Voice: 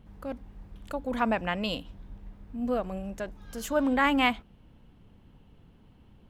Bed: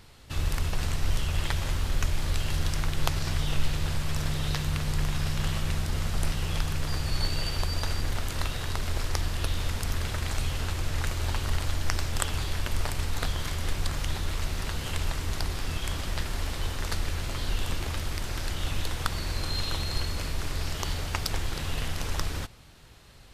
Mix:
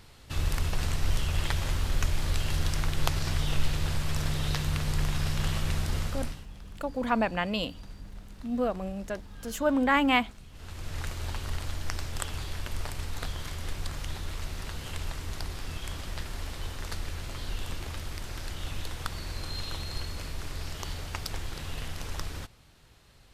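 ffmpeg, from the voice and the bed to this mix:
ffmpeg -i stem1.wav -i stem2.wav -filter_complex "[0:a]adelay=5900,volume=0.5dB[link_01];[1:a]volume=16dB,afade=type=out:start_time=5.94:duration=0.52:silence=0.0841395,afade=type=in:start_time=10.52:duration=0.47:silence=0.149624[link_02];[link_01][link_02]amix=inputs=2:normalize=0" out.wav

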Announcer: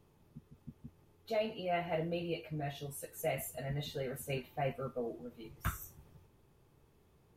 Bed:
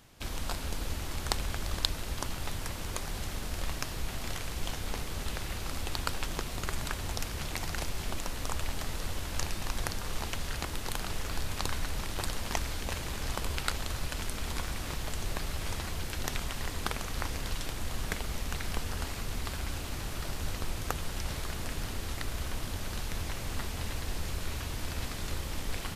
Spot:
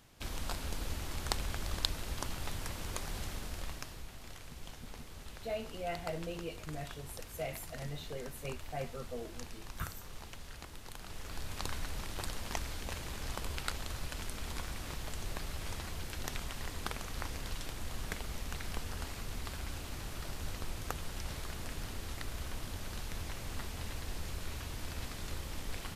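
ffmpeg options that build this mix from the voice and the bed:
ffmpeg -i stem1.wav -i stem2.wav -filter_complex "[0:a]adelay=4150,volume=-4dB[link_01];[1:a]volume=4dB,afade=type=out:start_time=3.2:duration=0.9:silence=0.334965,afade=type=in:start_time=10.97:duration=0.69:silence=0.421697[link_02];[link_01][link_02]amix=inputs=2:normalize=0" out.wav

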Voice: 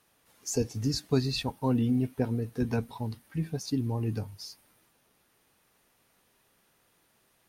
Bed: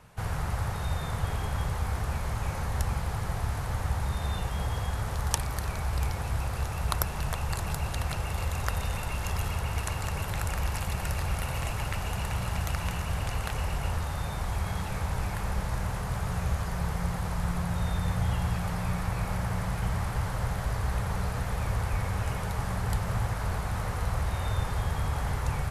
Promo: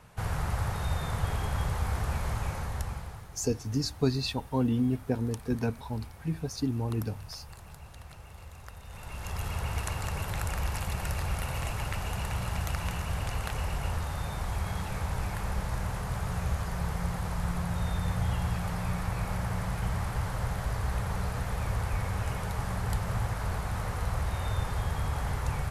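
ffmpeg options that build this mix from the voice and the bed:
ffmpeg -i stem1.wav -i stem2.wav -filter_complex "[0:a]adelay=2900,volume=-0.5dB[link_01];[1:a]volume=15dB,afade=type=out:start_time=2.3:duration=0.99:silence=0.149624,afade=type=in:start_time=8.85:duration=0.79:silence=0.177828[link_02];[link_01][link_02]amix=inputs=2:normalize=0" out.wav

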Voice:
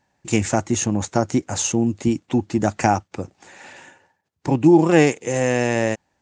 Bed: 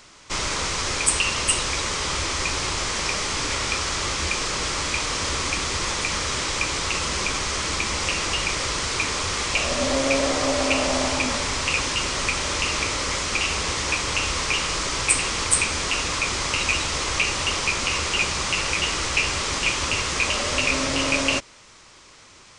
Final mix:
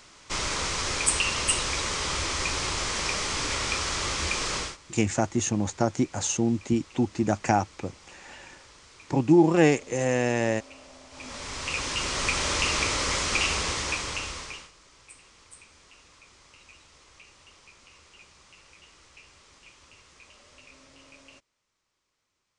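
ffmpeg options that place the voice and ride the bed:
ffmpeg -i stem1.wav -i stem2.wav -filter_complex "[0:a]adelay=4650,volume=-5dB[link_01];[1:a]volume=22dB,afade=type=out:start_time=4.57:duration=0.2:silence=0.0668344,afade=type=in:start_time=11.1:duration=1.34:silence=0.0530884,afade=type=out:start_time=13.43:duration=1.28:silence=0.0354813[link_02];[link_01][link_02]amix=inputs=2:normalize=0" out.wav

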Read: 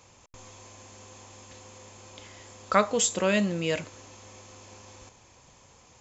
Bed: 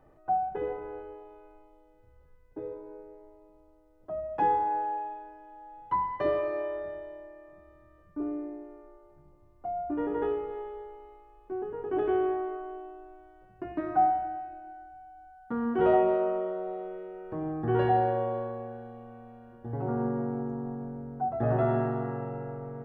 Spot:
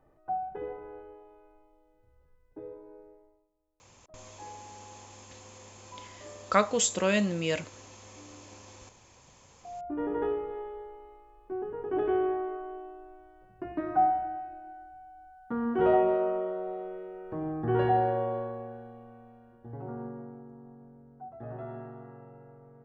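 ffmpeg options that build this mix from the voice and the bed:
ffmpeg -i stem1.wav -i stem2.wav -filter_complex "[0:a]adelay=3800,volume=-1.5dB[link_01];[1:a]volume=15.5dB,afade=type=out:start_time=3.08:duration=0.41:silence=0.158489,afade=type=in:start_time=9.55:duration=0.53:silence=0.0944061,afade=type=out:start_time=18.34:duration=2.08:silence=0.199526[link_02];[link_01][link_02]amix=inputs=2:normalize=0" out.wav

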